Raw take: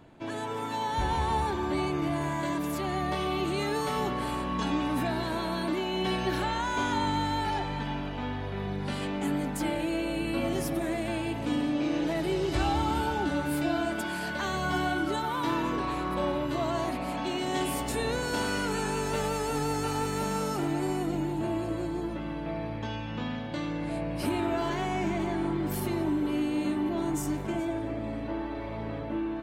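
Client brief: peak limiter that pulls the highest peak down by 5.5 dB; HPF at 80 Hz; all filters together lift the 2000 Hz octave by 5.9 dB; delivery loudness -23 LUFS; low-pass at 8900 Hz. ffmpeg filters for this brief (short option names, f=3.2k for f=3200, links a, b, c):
-af "highpass=80,lowpass=8.9k,equalizer=f=2k:t=o:g=8,volume=7dB,alimiter=limit=-13.5dB:level=0:latency=1"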